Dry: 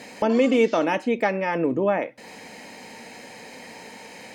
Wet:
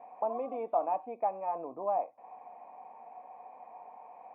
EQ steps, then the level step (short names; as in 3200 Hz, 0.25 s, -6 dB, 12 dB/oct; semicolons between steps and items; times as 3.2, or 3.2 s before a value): low shelf 190 Hz -10.5 dB; dynamic EQ 1600 Hz, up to -4 dB, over -34 dBFS, Q 0.78; vocal tract filter a; +5.5 dB